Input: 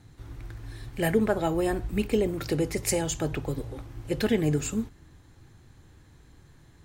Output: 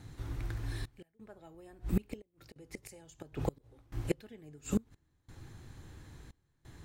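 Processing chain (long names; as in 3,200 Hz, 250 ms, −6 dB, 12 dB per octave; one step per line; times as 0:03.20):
gate with flip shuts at −20 dBFS, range −30 dB
gate pattern "xxxxx..x" 88 BPM −24 dB
level +2.5 dB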